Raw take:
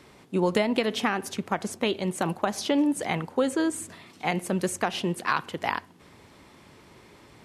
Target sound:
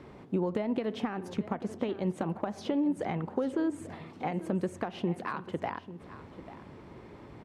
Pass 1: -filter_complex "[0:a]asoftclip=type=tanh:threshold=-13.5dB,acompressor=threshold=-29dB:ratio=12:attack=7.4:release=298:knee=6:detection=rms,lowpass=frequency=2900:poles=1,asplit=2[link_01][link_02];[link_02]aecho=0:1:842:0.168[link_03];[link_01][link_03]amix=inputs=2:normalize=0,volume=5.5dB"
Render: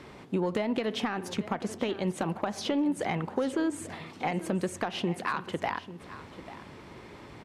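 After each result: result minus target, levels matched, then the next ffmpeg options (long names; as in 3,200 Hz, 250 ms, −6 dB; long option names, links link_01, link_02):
4,000 Hz band +8.0 dB; soft clipping: distortion +10 dB
-filter_complex "[0:a]asoftclip=type=tanh:threshold=-13.5dB,acompressor=threshold=-29dB:ratio=12:attack=7.4:release=298:knee=6:detection=rms,lowpass=frequency=760:poles=1,asplit=2[link_01][link_02];[link_02]aecho=0:1:842:0.168[link_03];[link_01][link_03]amix=inputs=2:normalize=0,volume=5.5dB"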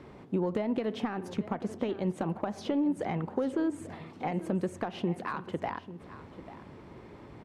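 soft clipping: distortion +10 dB
-filter_complex "[0:a]asoftclip=type=tanh:threshold=-7dB,acompressor=threshold=-29dB:ratio=12:attack=7.4:release=298:knee=6:detection=rms,lowpass=frequency=760:poles=1,asplit=2[link_01][link_02];[link_02]aecho=0:1:842:0.168[link_03];[link_01][link_03]amix=inputs=2:normalize=0,volume=5.5dB"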